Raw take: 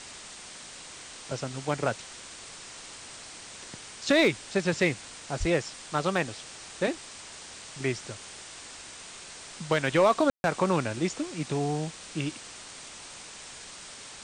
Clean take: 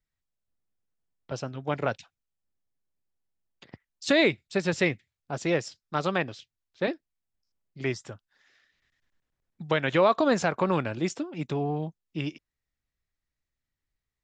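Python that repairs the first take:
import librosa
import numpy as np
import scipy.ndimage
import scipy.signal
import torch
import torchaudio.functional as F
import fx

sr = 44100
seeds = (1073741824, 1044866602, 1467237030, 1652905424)

y = fx.fix_declip(x, sr, threshold_db=-13.5)
y = fx.highpass(y, sr, hz=140.0, slope=24, at=(5.39, 5.51), fade=0.02)
y = fx.fix_ambience(y, sr, seeds[0], print_start_s=12.89, print_end_s=13.39, start_s=10.3, end_s=10.44)
y = fx.noise_reduce(y, sr, print_start_s=12.89, print_end_s=13.39, reduce_db=30.0)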